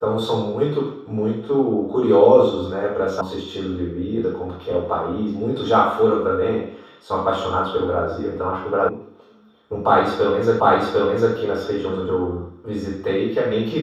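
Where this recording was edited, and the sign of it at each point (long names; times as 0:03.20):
0:03.21: cut off before it has died away
0:08.89: cut off before it has died away
0:10.60: the same again, the last 0.75 s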